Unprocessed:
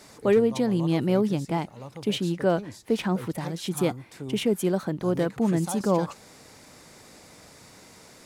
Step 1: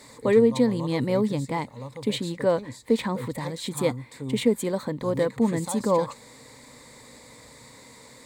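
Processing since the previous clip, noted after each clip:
EQ curve with evenly spaced ripples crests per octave 1, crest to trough 10 dB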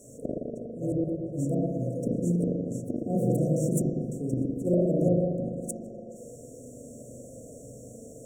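gate with flip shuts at −17 dBFS, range −28 dB
brick-wall band-stop 730–5,500 Hz
spring reverb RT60 2 s, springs 40/57 ms, chirp 50 ms, DRR −6 dB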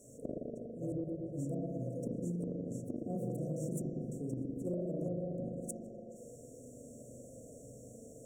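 downward compressor, threshold −27 dBFS, peak gain reduction 8 dB
level −7 dB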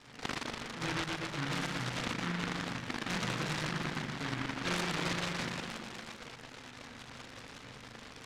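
transistor ladder low-pass 950 Hz, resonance 35%
short delay modulated by noise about 1,400 Hz, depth 0.5 ms
level +8.5 dB

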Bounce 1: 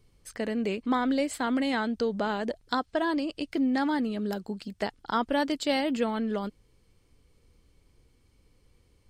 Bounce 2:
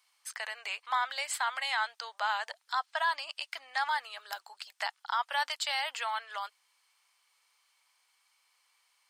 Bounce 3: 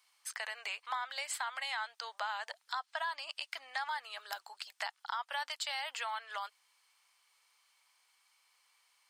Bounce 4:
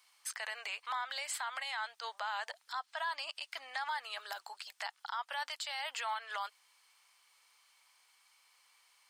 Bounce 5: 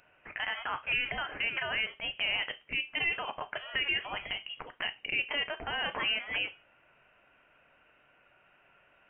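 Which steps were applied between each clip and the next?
Butterworth high-pass 830 Hz 36 dB per octave; brickwall limiter −23.5 dBFS, peak gain reduction 10 dB; level +3.5 dB
downward compressor 3 to 1, threshold −36 dBFS, peak gain reduction 8.5 dB
brickwall limiter −32 dBFS, peak gain reduction 10.5 dB; level +3.5 dB
rectangular room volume 180 cubic metres, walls furnished, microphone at 0.52 metres; voice inversion scrambler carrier 3,700 Hz; level +6.5 dB

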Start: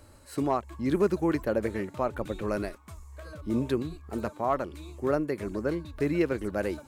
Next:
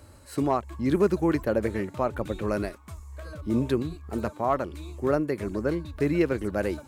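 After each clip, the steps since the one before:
high-pass filter 52 Hz
low-shelf EQ 90 Hz +6.5 dB
level +2 dB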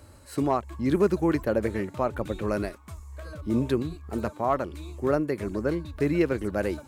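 no processing that can be heard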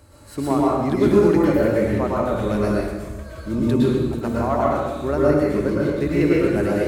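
convolution reverb RT60 1.2 s, pre-delay 103 ms, DRR −5.5 dB

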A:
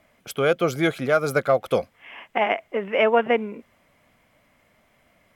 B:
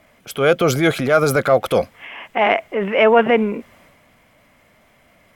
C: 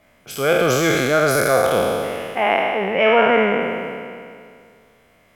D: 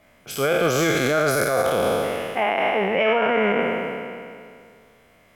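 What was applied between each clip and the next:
transient designer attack −5 dB, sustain +5 dB; level +7 dB
peak hold with a decay on every bin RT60 2.26 s; level −5 dB
brickwall limiter −11 dBFS, peak gain reduction 9 dB

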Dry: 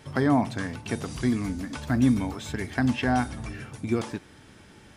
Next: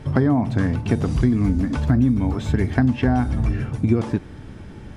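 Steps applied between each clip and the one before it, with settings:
spectral tilt −3 dB per octave
downward compressor 10 to 1, threshold −20 dBFS, peak gain reduction 11 dB
level +6.5 dB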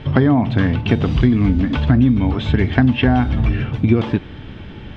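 low-pass with resonance 3,200 Hz, resonance Q 2.9
level +4 dB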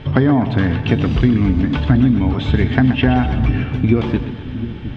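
echo with a time of its own for lows and highs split 310 Hz, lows 712 ms, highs 125 ms, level −10 dB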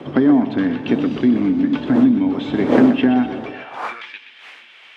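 wind on the microphone 490 Hz −23 dBFS
high-pass filter sweep 270 Hz → 2,300 Hz, 0:03.28–0:04.13
level −5 dB

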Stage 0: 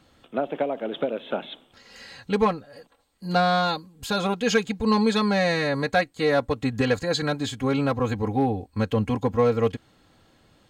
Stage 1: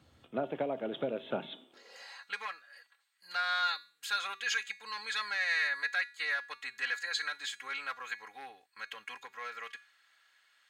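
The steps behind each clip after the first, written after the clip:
brickwall limiter −15 dBFS, peak gain reduction 6.5 dB
tuned comb filter 130 Hz, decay 0.38 s, harmonics odd, mix 60%
high-pass filter sweep 79 Hz → 1,700 Hz, 0:01.22–0:02.36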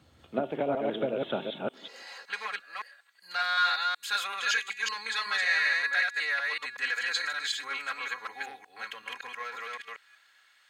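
delay that plays each chunk backwards 188 ms, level −1.5 dB
level +3 dB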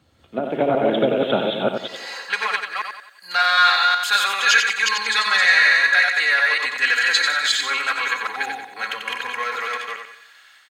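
automatic gain control gain up to 12 dB
repeating echo 91 ms, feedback 38%, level −6 dB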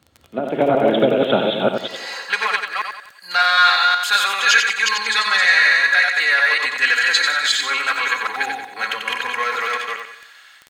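automatic gain control gain up to 4 dB
surface crackle 12 per second −28 dBFS

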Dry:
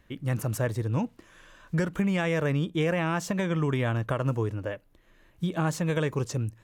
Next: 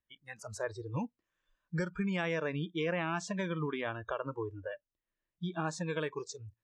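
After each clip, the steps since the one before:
low-pass filter 7,700 Hz 24 dB per octave
noise reduction from a noise print of the clip's start 25 dB
low-shelf EQ 490 Hz −3.5 dB
level −4.5 dB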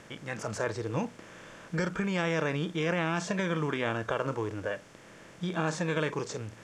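compressor on every frequency bin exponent 0.4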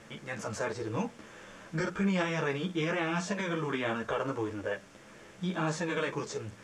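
string-ensemble chorus
level +2 dB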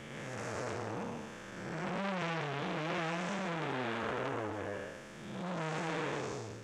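spectrum smeared in time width 333 ms
saturating transformer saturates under 2,100 Hz
level +4 dB

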